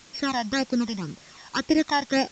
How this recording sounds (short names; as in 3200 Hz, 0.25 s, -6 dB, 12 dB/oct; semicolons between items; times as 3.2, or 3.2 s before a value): a buzz of ramps at a fixed pitch in blocks of 8 samples; phasing stages 12, 1.9 Hz, lowest notch 420–1300 Hz; a quantiser's noise floor 8-bit, dither triangular; µ-law